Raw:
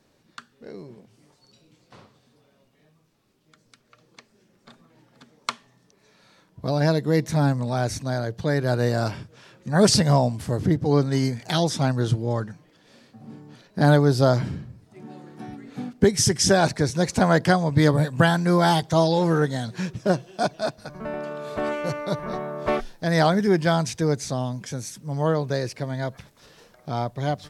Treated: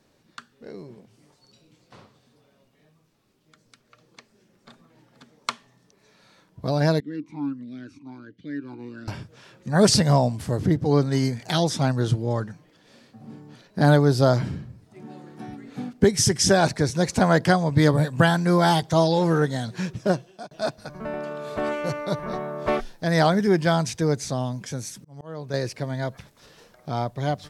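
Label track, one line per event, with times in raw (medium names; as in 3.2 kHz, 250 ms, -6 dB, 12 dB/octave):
7.000000	9.080000	talking filter i-u 1.4 Hz
20.070000	20.510000	fade out
24.950000	25.540000	slow attack 576 ms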